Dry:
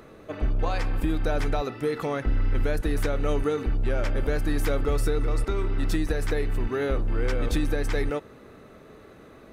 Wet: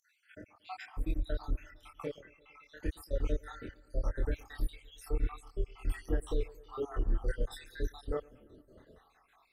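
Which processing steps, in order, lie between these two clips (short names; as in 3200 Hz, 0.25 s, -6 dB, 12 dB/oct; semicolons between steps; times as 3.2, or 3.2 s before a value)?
random spectral dropouts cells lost 75%; 2.18–2.81 band-pass 2500 Hz, Q 0.92; on a send: analogue delay 0.114 s, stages 2048, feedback 72%, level -23.5 dB; on the sum: chorus voices 6, 0.3 Hz, delay 25 ms, depth 2 ms; gain -4.5 dB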